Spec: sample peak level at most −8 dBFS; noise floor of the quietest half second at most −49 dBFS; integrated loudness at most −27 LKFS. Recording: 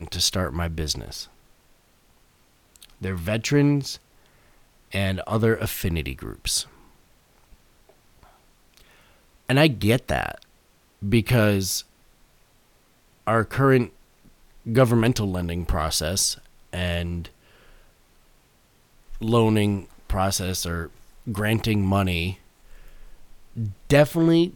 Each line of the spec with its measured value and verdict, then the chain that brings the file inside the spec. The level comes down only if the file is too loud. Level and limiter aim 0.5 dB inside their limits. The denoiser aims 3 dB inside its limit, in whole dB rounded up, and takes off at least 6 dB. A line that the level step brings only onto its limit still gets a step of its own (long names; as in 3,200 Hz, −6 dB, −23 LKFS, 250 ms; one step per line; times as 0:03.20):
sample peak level −5.5 dBFS: out of spec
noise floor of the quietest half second −60 dBFS: in spec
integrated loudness −23.5 LKFS: out of spec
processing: level −4 dB